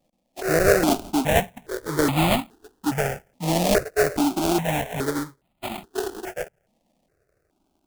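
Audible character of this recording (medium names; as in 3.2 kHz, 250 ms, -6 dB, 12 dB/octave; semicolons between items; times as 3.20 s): aliases and images of a low sample rate 1.1 kHz, jitter 20%; notches that jump at a steady rate 2.4 Hz 400–1600 Hz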